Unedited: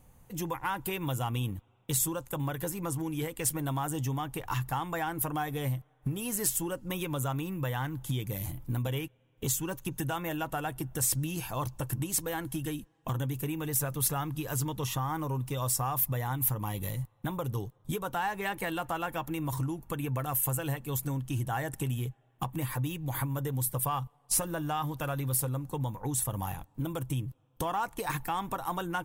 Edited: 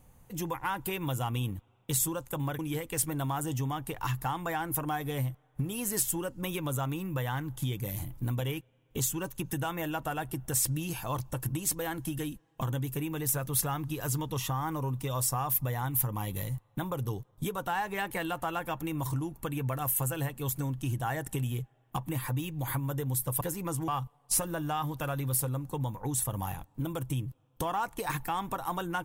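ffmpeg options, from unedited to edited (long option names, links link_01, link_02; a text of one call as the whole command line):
ffmpeg -i in.wav -filter_complex "[0:a]asplit=4[link_01][link_02][link_03][link_04];[link_01]atrim=end=2.592[link_05];[link_02]atrim=start=3.058:end=23.882[link_06];[link_03]atrim=start=2.588:end=3.062[link_07];[link_04]atrim=start=23.878[link_08];[link_05][link_06]acrossfade=duration=0.004:curve1=hsin:curve2=hsin[link_09];[link_09][link_07]acrossfade=duration=0.004:curve1=hsin:curve2=hsin[link_10];[link_10][link_08]acrossfade=duration=0.004:curve1=hsin:curve2=hsin" out.wav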